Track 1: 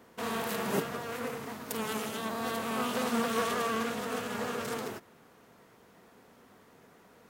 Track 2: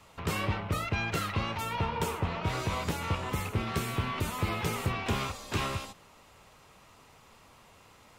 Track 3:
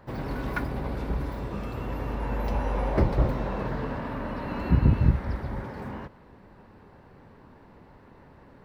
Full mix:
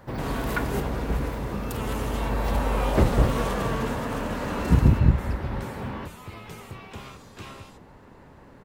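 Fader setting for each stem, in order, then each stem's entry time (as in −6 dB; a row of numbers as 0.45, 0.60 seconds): −1.5, −10.0, +2.5 decibels; 0.00, 1.85, 0.00 seconds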